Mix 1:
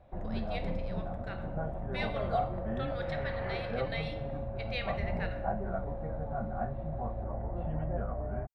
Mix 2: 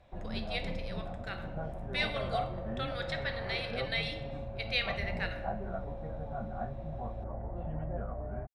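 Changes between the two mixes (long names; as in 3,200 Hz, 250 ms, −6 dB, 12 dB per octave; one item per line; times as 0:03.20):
speech: add high-shelf EQ 2,300 Hz +12 dB
first sound −3.0 dB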